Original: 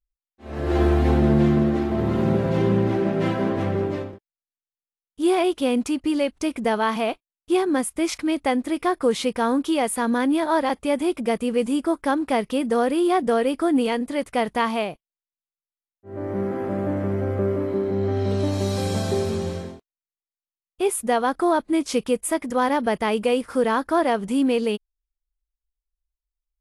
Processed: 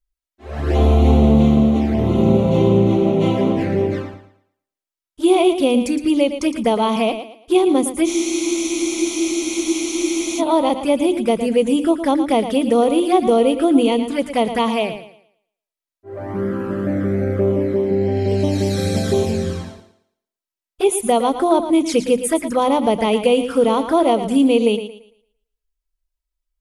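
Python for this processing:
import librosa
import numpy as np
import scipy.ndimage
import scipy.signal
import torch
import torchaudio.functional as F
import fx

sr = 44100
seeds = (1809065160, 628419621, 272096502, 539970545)

p1 = fx.hum_notches(x, sr, base_hz=50, count=7)
p2 = fx.env_flanger(p1, sr, rest_ms=3.1, full_db=-19.5)
p3 = p2 + fx.echo_thinned(p2, sr, ms=113, feedback_pct=32, hz=160.0, wet_db=-10, dry=0)
p4 = fx.spec_freeze(p3, sr, seeds[0], at_s=8.09, hold_s=2.3)
y = p4 * librosa.db_to_amplitude(7.0)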